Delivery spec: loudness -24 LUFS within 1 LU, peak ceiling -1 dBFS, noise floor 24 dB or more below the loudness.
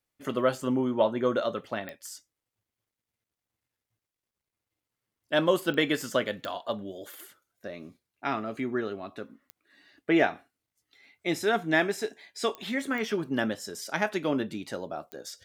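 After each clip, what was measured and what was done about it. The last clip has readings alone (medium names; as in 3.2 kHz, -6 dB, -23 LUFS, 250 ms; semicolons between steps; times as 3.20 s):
clicks found 7; loudness -29.5 LUFS; peak level -9.5 dBFS; loudness target -24.0 LUFS
-> de-click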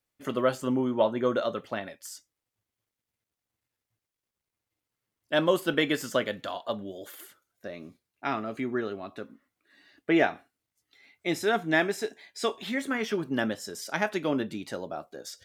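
clicks found 0; loudness -29.5 LUFS; peak level -9.5 dBFS; loudness target -24.0 LUFS
-> trim +5.5 dB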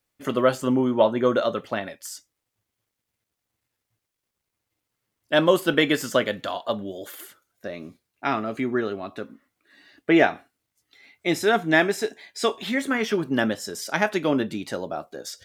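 loudness -24.0 LUFS; peak level -4.0 dBFS; noise floor -83 dBFS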